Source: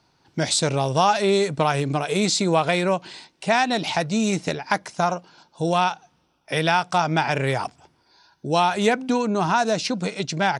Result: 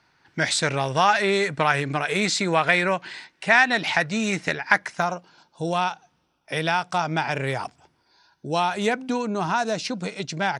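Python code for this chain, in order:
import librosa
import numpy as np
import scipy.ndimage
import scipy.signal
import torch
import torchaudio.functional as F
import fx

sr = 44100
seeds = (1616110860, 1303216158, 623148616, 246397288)

y = fx.peak_eq(x, sr, hz=1800.0, db=fx.steps((0.0, 13.5), (5.02, 2.5)), octaves=1.1)
y = y * 10.0 ** (-4.0 / 20.0)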